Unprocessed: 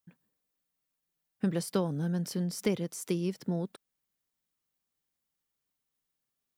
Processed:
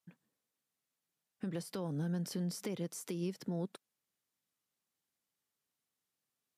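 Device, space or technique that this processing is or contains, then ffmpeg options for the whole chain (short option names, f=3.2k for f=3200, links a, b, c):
podcast mastering chain: -af "highpass=110,deesser=0.85,acompressor=threshold=-33dB:ratio=2,alimiter=level_in=4dB:limit=-24dB:level=0:latency=1:release=124,volume=-4dB" -ar 32000 -c:a libmp3lame -b:a 112k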